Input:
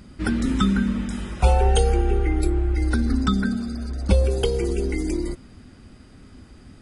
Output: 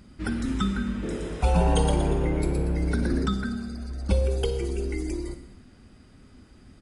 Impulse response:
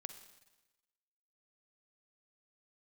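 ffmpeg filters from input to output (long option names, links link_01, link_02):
-filter_complex "[0:a]asplit=3[link_01][link_02][link_03];[link_01]afade=type=out:start_time=1.02:duration=0.02[link_04];[link_02]asplit=6[link_05][link_06][link_07][link_08][link_09][link_10];[link_06]adelay=118,afreqshift=110,volume=-4dB[link_11];[link_07]adelay=236,afreqshift=220,volume=-12dB[link_12];[link_08]adelay=354,afreqshift=330,volume=-19.9dB[link_13];[link_09]adelay=472,afreqshift=440,volume=-27.9dB[link_14];[link_10]adelay=590,afreqshift=550,volume=-35.8dB[link_15];[link_05][link_11][link_12][link_13][link_14][link_15]amix=inputs=6:normalize=0,afade=type=in:start_time=1.02:duration=0.02,afade=type=out:start_time=3.25:duration=0.02[link_16];[link_03]afade=type=in:start_time=3.25:duration=0.02[link_17];[link_04][link_16][link_17]amix=inputs=3:normalize=0[link_18];[1:a]atrim=start_sample=2205,afade=type=out:start_time=0.32:duration=0.01,atrim=end_sample=14553[link_19];[link_18][link_19]afir=irnorm=-1:irlink=0,volume=-1dB"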